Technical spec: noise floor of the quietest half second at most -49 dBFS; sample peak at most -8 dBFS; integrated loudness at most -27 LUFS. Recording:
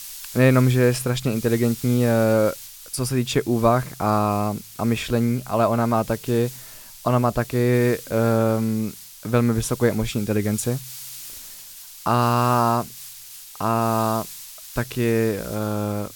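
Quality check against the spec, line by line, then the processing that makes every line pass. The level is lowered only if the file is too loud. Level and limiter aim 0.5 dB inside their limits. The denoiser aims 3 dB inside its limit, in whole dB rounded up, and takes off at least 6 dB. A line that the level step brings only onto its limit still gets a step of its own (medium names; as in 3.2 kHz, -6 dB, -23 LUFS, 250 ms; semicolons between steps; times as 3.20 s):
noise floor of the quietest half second -41 dBFS: fail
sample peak -2.5 dBFS: fail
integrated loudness -22.0 LUFS: fail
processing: noise reduction 6 dB, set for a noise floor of -41 dBFS; trim -5.5 dB; peak limiter -8.5 dBFS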